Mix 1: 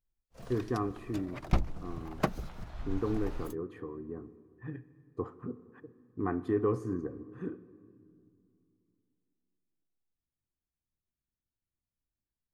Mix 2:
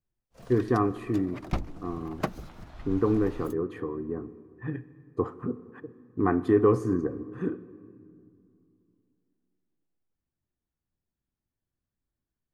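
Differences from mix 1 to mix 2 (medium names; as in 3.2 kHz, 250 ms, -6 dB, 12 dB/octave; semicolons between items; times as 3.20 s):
speech +8.5 dB; master: add bass shelf 78 Hz -5 dB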